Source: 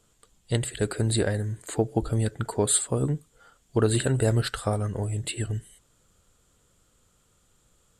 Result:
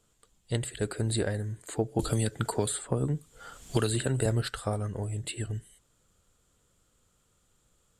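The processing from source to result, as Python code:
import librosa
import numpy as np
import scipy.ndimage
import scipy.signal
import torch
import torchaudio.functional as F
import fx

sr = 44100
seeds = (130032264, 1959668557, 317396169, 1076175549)

y = fx.band_squash(x, sr, depth_pct=100, at=(1.99, 4.26))
y = F.gain(torch.from_numpy(y), -4.5).numpy()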